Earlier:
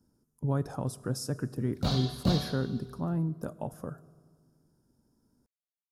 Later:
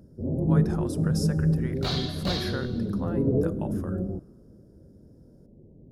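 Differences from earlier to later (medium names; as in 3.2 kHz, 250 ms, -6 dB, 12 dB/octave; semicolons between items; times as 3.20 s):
first sound: unmuted; master: add graphic EQ 125/250/2000/4000 Hz -8/-4/+9/+3 dB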